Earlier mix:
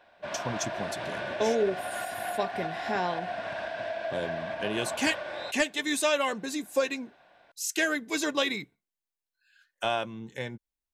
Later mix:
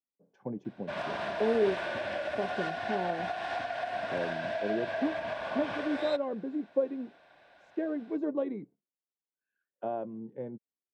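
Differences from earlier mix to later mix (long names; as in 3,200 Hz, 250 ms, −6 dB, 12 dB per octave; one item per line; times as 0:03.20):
speech: add flat-topped band-pass 310 Hz, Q 0.7
background: entry +0.65 s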